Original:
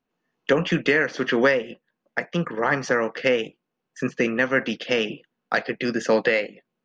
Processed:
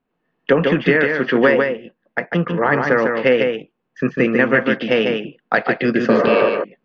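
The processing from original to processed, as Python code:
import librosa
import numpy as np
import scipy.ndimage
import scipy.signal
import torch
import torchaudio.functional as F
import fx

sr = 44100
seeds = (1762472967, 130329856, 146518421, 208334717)

p1 = fx.air_absorb(x, sr, metres=300.0)
p2 = fx.spec_repair(p1, sr, seeds[0], start_s=6.12, length_s=0.34, low_hz=300.0, high_hz=2200.0, source='before')
p3 = fx.rider(p2, sr, range_db=10, speed_s=2.0)
p4 = p2 + (p3 * 10.0 ** (2.0 / 20.0))
y = p4 + 10.0 ** (-4.5 / 20.0) * np.pad(p4, (int(148 * sr / 1000.0), 0))[:len(p4)]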